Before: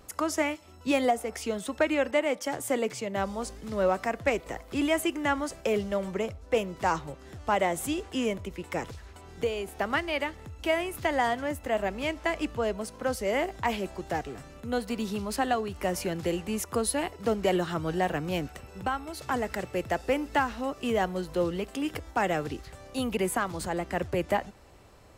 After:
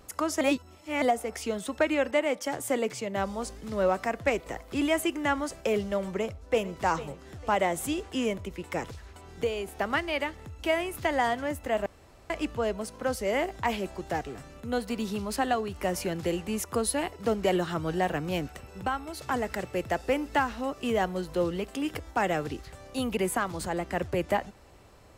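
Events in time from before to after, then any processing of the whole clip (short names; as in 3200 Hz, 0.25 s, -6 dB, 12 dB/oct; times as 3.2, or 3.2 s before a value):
0.41–1.02 reverse
6.18–6.78 echo throw 0.45 s, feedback 35%, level -14.5 dB
11.86–12.3 room tone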